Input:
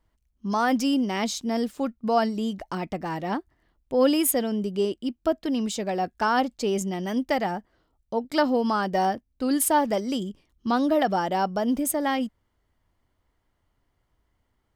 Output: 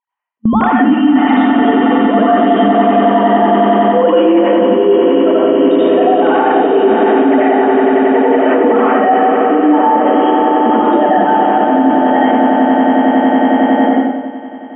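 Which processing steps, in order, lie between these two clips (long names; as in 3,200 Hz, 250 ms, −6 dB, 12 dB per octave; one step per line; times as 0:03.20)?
three sine waves on the formant tracks
echo that builds up and dies away 92 ms, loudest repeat 8, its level −11 dB
noise gate with hold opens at −21 dBFS
low-pass filter 2,100 Hz 6 dB per octave
convolution reverb RT60 1.0 s, pre-delay 75 ms, DRR −8.5 dB
reversed playback
downward compressor 10 to 1, threshold −25 dBFS, peak gain reduction 20 dB
reversed playback
boost into a limiter +22 dB
level −1 dB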